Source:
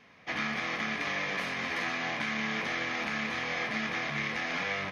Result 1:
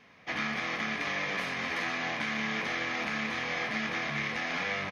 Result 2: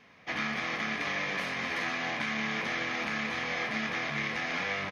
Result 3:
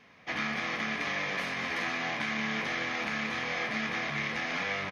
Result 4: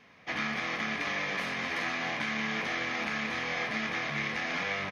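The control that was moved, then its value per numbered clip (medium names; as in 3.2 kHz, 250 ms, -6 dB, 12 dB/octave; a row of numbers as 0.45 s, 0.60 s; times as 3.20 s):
feedback delay, time: 938 ms, 280 ms, 191 ms, 631 ms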